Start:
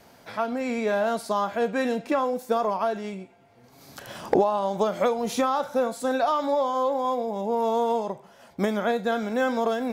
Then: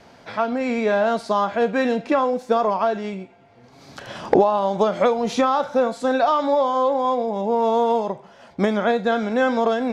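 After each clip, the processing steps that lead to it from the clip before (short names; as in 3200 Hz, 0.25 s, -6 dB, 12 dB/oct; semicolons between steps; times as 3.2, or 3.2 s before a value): LPF 5400 Hz 12 dB/oct; gain +5 dB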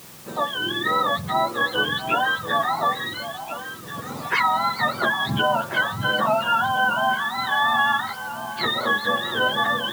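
spectrum mirrored in octaves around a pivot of 890 Hz; echo with dull and thin repeats by turns 0.694 s, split 860 Hz, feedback 53%, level -7 dB; added noise white -45 dBFS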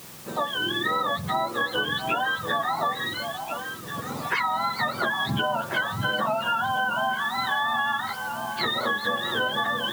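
compressor, threshold -22 dBFS, peak gain reduction 6.5 dB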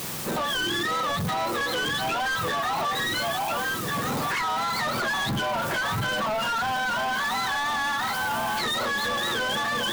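limiter -23 dBFS, peak gain reduction 10 dB; sample leveller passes 3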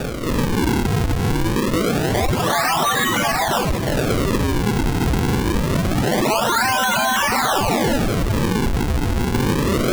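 bin magnitudes rounded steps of 30 dB; decimation with a swept rate 42×, swing 160% 0.25 Hz; gain +9 dB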